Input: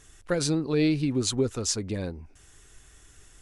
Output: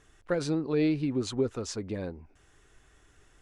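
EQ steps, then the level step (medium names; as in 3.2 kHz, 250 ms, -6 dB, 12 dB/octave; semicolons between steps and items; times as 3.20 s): low-pass 1.6 kHz 6 dB/octave; bass shelf 200 Hz -7.5 dB; 0.0 dB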